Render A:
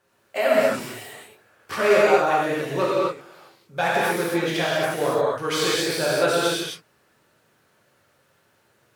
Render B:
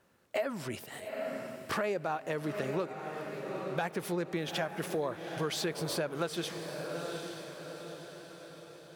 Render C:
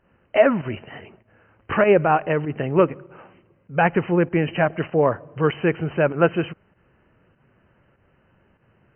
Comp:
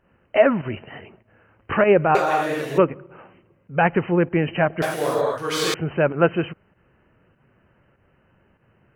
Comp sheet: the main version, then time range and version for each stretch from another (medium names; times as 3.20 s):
C
2.15–2.78 s: from A
4.82–5.74 s: from A
not used: B